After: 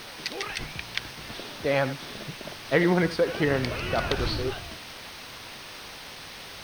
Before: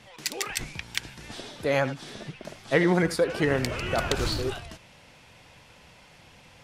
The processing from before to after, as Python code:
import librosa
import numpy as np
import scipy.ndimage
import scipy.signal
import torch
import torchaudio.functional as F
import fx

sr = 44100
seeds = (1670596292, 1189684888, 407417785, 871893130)

y = fx.quant_dither(x, sr, seeds[0], bits=6, dither='triangular')
y = scipy.signal.savgol_filter(y, 15, 4, mode='constant')